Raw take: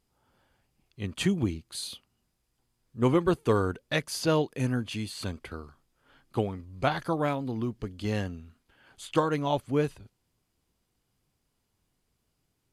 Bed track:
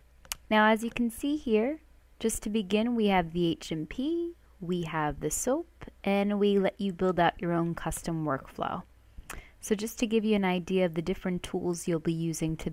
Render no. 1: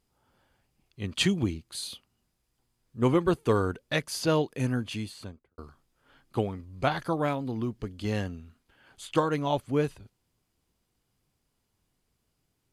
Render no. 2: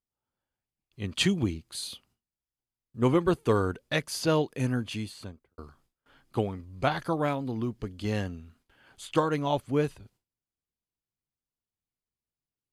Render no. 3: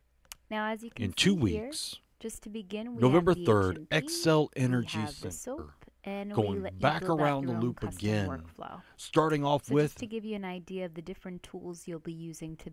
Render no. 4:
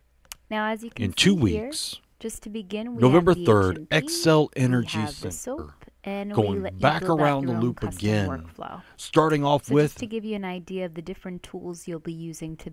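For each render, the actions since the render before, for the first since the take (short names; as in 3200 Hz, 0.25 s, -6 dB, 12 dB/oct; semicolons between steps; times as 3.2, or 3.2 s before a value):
1.11–1.51 bell 4100 Hz +11 dB -> +1 dB 1.8 oct; 4.91–5.58 studio fade out
gate with hold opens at -57 dBFS
add bed track -10.5 dB
gain +6.5 dB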